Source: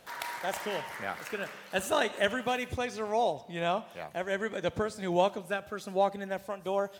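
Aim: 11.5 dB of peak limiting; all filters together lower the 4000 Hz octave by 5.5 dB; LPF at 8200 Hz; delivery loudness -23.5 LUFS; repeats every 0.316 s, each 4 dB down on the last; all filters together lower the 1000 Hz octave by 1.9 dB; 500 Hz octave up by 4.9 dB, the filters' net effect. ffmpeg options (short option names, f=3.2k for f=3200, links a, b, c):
-af "lowpass=8.2k,equalizer=f=500:t=o:g=8.5,equalizer=f=1k:t=o:g=-7.5,equalizer=f=4k:t=o:g=-7,alimiter=limit=-21dB:level=0:latency=1,aecho=1:1:316|632|948|1264|1580|1896|2212|2528|2844:0.631|0.398|0.25|0.158|0.0994|0.0626|0.0394|0.0249|0.0157,volume=7dB"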